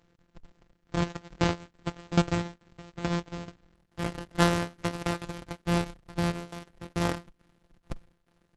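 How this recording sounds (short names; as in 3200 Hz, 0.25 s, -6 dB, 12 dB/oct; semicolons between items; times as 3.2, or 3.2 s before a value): a buzz of ramps at a fixed pitch in blocks of 256 samples; tremolo saw down 2.3 Hz, depth 85%; Opus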